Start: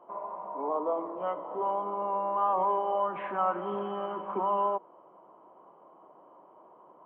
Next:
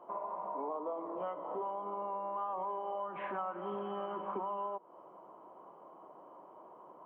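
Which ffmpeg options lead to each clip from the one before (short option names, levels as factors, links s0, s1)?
-af "acompressor=threshold=0.0141:ratio=6,volume=1.12"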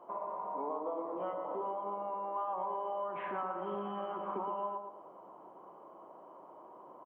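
-filter_complex "[0:a]asplit=2[s0][s1];[s1]adelay=118,lowpass=f=1500:p=1,volume=0.562,asplit=2[s2][s3];[s3]adelay=118,lowpass=f=1500:p=1,volume=0.41,asplit=2[s4][s5];[s5]adelay=118,lowpass=f=1500:p=1,volume=0.41,asplit=2[s6][s7];[s7]adelay=118,lowpass=f=1500:p=1,volume=0.41,asplit=2[s8][s9];[s9]adelay=118,lowpass=f=1500:p=1,volume=0.41[s10];[s0][s2][s4][s6][s8][s10]amix=inputs=6:normalize=0"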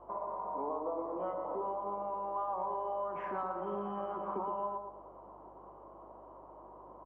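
-filter_complex "[0:a]acrossover=split=170|1400[s0][s1][s2];[s2]adynamicsmooth=sensitivity=3.5:basefreq=2300[s3];[s0][s1][s3]amix=inputs=3:normalize=0,aeval=exprs='val(0)+0.000501*(sin(2*PI*50*n/s)+sin(2*PI*2*50*n/s)/2+sin(2*PI*3*50*n/s)/3+sin(2*PI*4*50*n/s)/4+sin(2*PI*5*50*n/s)/5)':c=same,volume=1.12"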